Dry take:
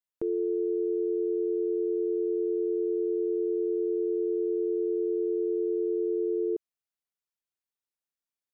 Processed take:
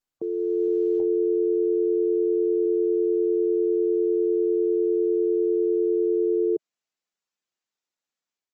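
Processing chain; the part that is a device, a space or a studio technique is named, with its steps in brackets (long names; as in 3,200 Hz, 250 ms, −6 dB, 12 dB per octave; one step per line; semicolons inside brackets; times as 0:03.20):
0:00.68–0:02.66: high-pass filter 57 Hz 24 dB per octave
noise-suppressed video call (high-pass filter 150 Hz 24 dB per octave; gate on every frequency bin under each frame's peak −30 dB strong; automatic gain control gain up to 6 dB; Opus 20 kbit/s 48,000 Hz)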